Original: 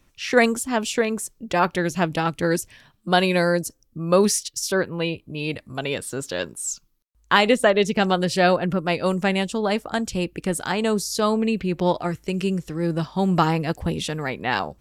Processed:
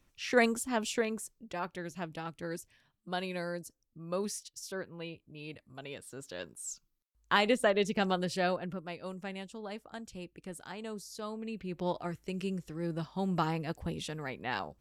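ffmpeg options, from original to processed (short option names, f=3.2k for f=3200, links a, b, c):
-af "volume=6dB,afade=t=out:st=0.91:d=0.67:silence=0.375837,afade=t=in:st=6.03:d=1.3:silence=0.421697,afade=t=out:st=8.08:d=0.85:silence=0.334965,afade=t=in:st=11.39:d=0.58:silence=0.421697"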